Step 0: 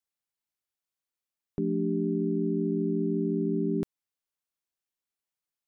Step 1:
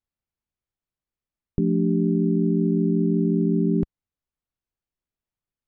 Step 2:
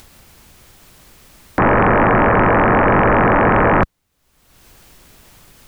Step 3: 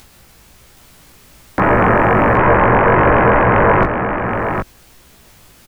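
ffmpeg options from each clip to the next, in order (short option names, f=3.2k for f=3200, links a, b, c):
-af "aemphasis=mode=reproduction:type=riaa"
-af "aeval=exprs='0.335*sin(PI/2*7.94*val(0)/0.335)':c=same,acompressor=mode=upward:threshold=-26dB:ratio=2.5"
-af "flanger=delay=15:depth=4.4:speed=1.2,aecho=1:1:771:0.473,volume=3.5dB"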